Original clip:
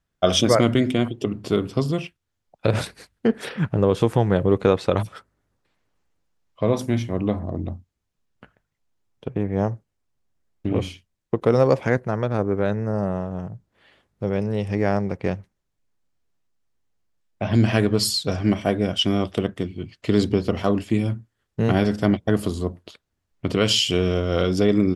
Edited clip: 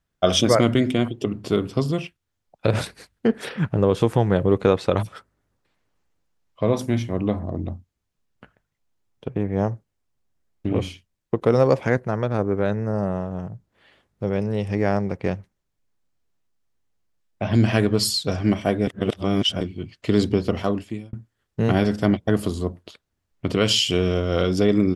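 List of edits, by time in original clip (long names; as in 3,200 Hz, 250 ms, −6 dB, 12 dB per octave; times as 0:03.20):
0:18.87–0:19.61: reverse
0:20.56–0:21.13: fade out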